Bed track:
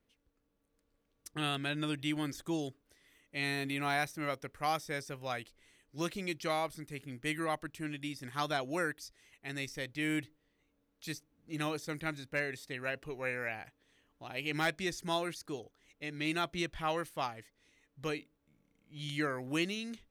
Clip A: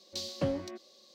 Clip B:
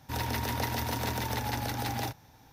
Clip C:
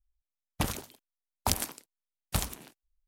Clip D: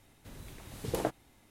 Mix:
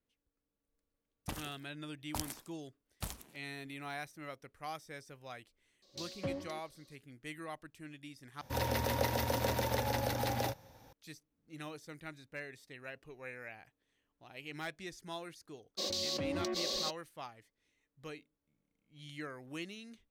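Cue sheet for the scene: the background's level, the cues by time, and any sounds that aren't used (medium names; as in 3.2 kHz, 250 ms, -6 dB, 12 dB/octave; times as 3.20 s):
bed track -10 dB
0.68 s: add C -11.5 dB
5.82 s: add A -7.5 dB
8.41 s: replace with B -3 dB + peaking EQ 540 Hz +14.5 dB 0.27 oct
15.77 s: add A -10 dB, fades 0.02 s + level flattener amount 100%
not used: D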